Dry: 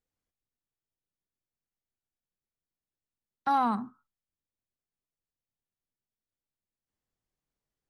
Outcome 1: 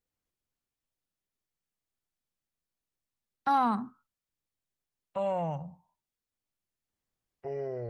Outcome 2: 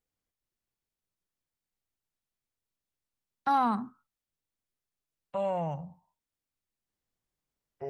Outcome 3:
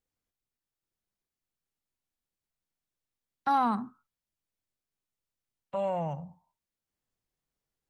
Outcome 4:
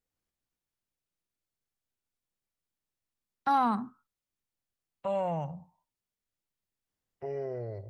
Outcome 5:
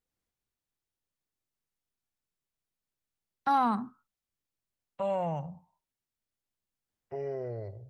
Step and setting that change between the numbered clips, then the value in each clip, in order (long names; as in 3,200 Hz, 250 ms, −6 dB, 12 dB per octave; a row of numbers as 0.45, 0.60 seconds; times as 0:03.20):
delay with pitch and tempo change per echo, delay time: 254, 439, 832, 144, 92 milliseconds